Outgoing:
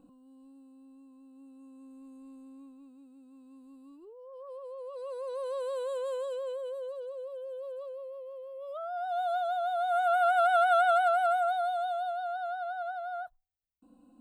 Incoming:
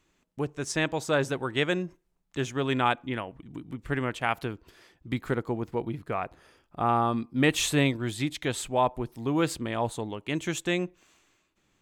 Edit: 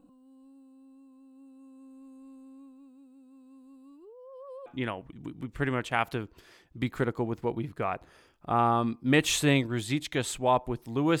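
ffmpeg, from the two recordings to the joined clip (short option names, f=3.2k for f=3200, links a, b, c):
-filter_complex "[0:a]apad=whole_dur=11.2,atrim=end=11.2,atrim=end=4.662[a];[1:a]atrim=start=2.958:end=9.5[b];[a][b]acrossfade=d=0.004:c1=hsin:c2=hsin"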